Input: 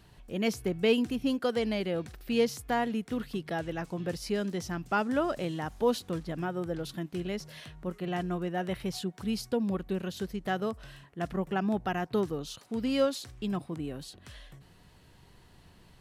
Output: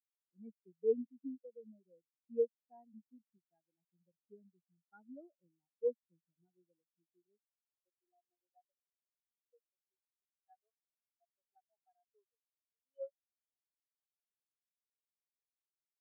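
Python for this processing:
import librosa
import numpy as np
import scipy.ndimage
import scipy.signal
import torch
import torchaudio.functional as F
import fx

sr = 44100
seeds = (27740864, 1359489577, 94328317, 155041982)

y = fx.filter_sweep_highpass(x, sr, from_hz=150.0, to_hz=630.0, start_s=6.66, end_s=8.79, q=0.91)
y = fx.spectral_expand(y, sr, expansion=4.0)
y = y * 10.0 ** (-8.5 / 20.0)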